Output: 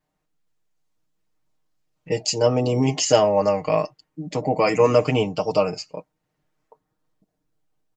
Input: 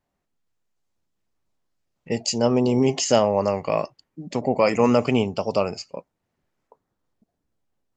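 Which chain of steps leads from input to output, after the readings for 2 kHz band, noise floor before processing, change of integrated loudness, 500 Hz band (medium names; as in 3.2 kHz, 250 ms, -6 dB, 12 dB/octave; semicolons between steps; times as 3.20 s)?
+1.0 dB, -79 dBFS, +1.0 dB, +2.0 dB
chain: comb 6.5 ms, depth 89%; trim -1 dB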